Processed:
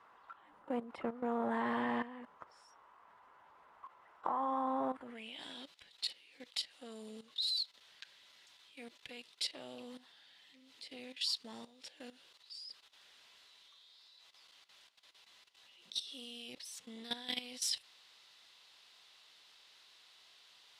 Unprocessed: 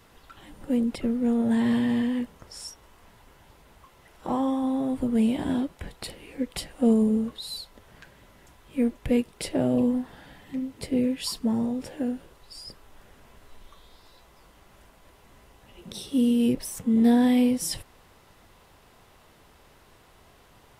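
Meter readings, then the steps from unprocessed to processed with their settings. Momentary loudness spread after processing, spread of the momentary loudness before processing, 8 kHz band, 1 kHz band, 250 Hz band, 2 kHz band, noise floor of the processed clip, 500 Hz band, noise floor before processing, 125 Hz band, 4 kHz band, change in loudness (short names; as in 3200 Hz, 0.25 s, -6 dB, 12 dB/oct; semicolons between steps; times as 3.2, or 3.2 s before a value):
22 LU, 18 LU, -8.5 dB, -3.0 dB, -22.0 dB, -6.0 dB, -65 dBFS, -14.0 dB, -57 dBFS, under -25 dB, -1.0 dB, -14.0 dB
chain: added harmonics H 4 -21 dB, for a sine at -10.5 dBFS; band-pass sweep 1100 Hz -> 4000 Hz, 4.88–5.43; level quantiser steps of 14 dB; gain +7 dB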